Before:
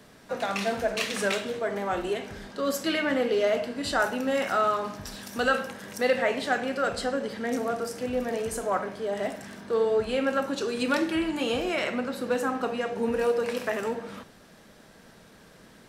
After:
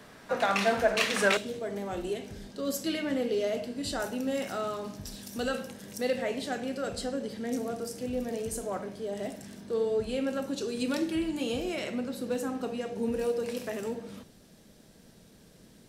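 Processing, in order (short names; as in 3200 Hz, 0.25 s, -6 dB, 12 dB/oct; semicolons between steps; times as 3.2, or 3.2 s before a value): bell 1300 Hz +4 dB 2.3 oct, from 1.37 s -12.5 dB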